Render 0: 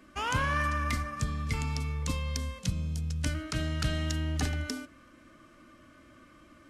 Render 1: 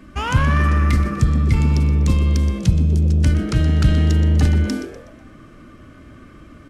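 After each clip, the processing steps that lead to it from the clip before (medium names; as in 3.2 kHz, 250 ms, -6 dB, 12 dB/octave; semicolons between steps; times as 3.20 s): tone controls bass +11 dB, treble -3 dB; frequency-shifting echo 123 ms, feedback 39%, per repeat +130 Hz, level -13 dB; in parallel at -4 dB: saturation -25 dBFS, distortion -9 dB; on the sum: trim +4 dB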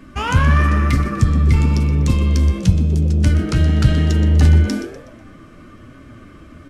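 flange 1 Hz, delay 6.8 ms, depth 6.1 ms, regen +54%; trim +6 dB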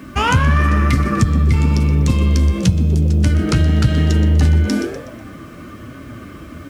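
high-pass 55 Hz; compression 3:1, threshold -19 dBFS, peak gain reduction 9.5 dB; bit crusher 10-bit; trim +7 dB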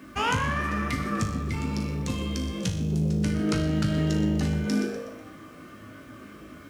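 bass shelf 120 Hz -12 dB; feedback comb 52 Hz, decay 0.66 s, harmonics all, mix 80%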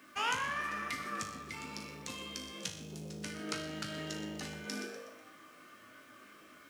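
high-pass 1.1 kHz 6 dB/octave; trim -4.5 dB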